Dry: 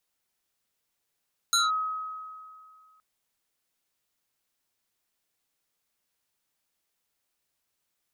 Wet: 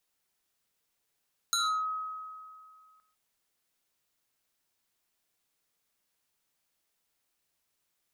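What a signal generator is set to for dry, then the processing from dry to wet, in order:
FM tone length 1.47 s, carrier 1270 Hz, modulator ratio 2.09, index 3, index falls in 0.18 s linear, decay 2.21 s, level -19 dB
compressor, threshold -28 dBFS; non-linear reverb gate 0.16 s flat, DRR 10 dB

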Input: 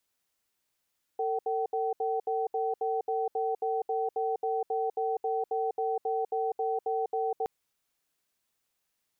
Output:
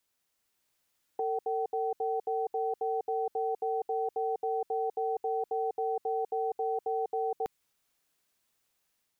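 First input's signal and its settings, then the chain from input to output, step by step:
cadence 450 Hz, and 764 Hz, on 0.20 s, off 0.07 s, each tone -29.5 dBFS 6.27 s
dynamic EQ 600 Hz, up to -5 dB, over -42 dBFS, Q 0.75; AGC gain up to 3 dB

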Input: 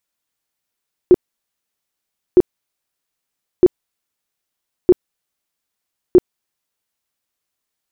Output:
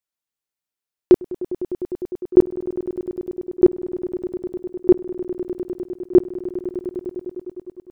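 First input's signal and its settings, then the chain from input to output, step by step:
tone bursts 361 Hz, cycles 12, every 1.26 s, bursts 5, -3.5 dBFS
swelling echo 0.101 s, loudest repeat 5, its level -16.5 dB; gate -34 dBFS, range -10 dB

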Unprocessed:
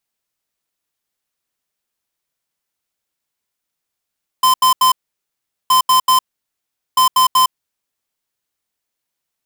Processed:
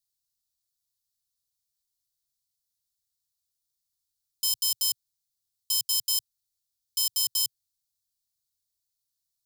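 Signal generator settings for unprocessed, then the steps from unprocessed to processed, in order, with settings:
beep pattern square 1030 Hz, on 0.11 s, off 0.08 s, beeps 3, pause 0.78 s, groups 3, -11 dBFS
sample leveller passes 1; soft clip -13 dBFS; elliptic band-stop 120–4100 Hz, stop band 40 dB

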